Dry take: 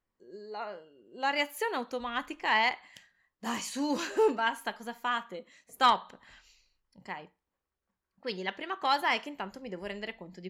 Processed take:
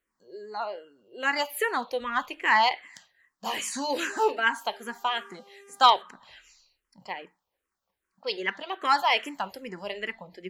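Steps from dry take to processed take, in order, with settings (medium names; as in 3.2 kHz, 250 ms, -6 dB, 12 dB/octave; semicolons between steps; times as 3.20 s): bass shelf 260 Hz -10.5 dB; 4.64–6.01 s: mains buzz 400 Hz, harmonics 33, -60 dBFS -7 dB/octave; 9.24–9.69 s: treble shelf 4.9 kHz +8 dB; barber-pole phaser -2.5 Hz; trim +8.5 dB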